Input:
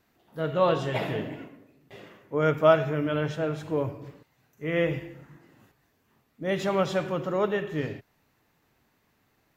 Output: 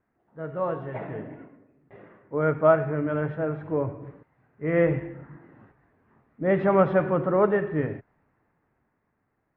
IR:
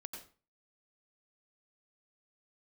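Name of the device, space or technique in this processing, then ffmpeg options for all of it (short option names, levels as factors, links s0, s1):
action camera in a waterproof case: -af "lowpass=f=2000:w=0.5412,lowpass=f=2000:w=1.3066,equalizer=f=2900:t=o:w=0.76:g=-4,dynaudnorm=f=320:g=11:m=4.47,volume=0.531" -ar 48000 -c:a aac -b:a 64k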